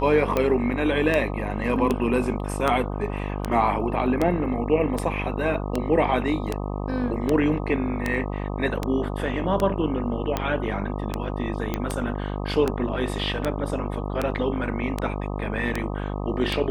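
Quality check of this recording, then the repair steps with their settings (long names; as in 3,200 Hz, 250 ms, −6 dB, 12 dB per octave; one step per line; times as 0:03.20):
mains buzz 50 Hz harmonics 25 −29 dBFS
scratch tick 78 rpm −10 dBFS
0:11.74: click −12 dBFS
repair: click removal
hum removal 50 Hz, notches 25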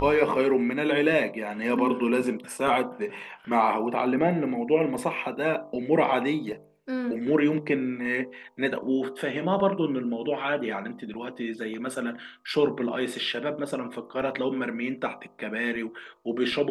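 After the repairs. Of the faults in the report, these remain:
none of them is left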